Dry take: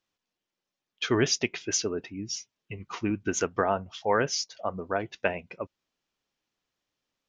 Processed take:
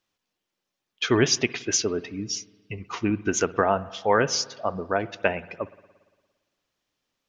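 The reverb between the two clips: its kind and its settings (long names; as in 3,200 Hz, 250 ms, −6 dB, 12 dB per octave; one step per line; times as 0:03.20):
spring reverb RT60 1.4 s, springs 57 ms, chirp 50 ms, DRR 17.5 dB
level +4 dB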